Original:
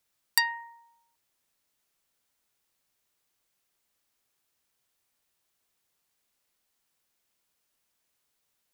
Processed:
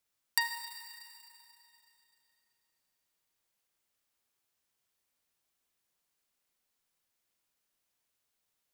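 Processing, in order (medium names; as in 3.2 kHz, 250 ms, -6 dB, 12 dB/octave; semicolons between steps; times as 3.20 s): Schroeder reverb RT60 3.1 s, combs from 33 ms, DRR 6 dB; trim -5.5 dB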